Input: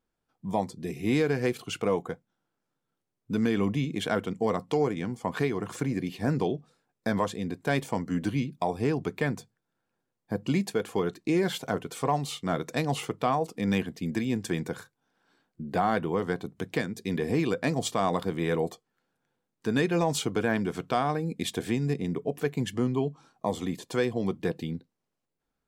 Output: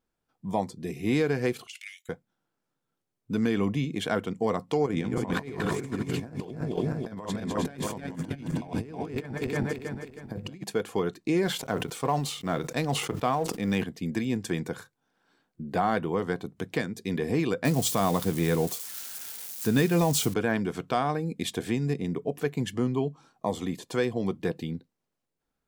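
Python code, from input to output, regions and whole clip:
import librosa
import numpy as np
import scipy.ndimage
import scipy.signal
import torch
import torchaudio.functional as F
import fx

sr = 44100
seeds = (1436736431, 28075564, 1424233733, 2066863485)

y = fx.chain(x, sr, fx.steep_highpass(hz=1800.0, slope=72),
    fx.over_compress(threshold_db=-39.0, ratio=-0.5), at=(1.67, 2.09))
y = fx.chain(y, sr, fx.reverse_delay_fb(ms=159, feedback_pct=61, wet_db=-3.5),
    fx.low_shelf(hz=320.0, db=3.0),
    fx.over_compress(threshold_db=-31.0, ratio=-0.5), at=(4.86, 10.64))
y = fx.chain(y, sr, fx.law_mismatch(coded='A'),
    fx.sustainer(db_per_s=63.0), at=(11.46, 13.84))
y = fx.chain(y, sr, fx.crossing_spikes(level_db=-29.0),
    fx.bass_treble(bass_db=6, treble_db=3), at=(17.65, 20.34))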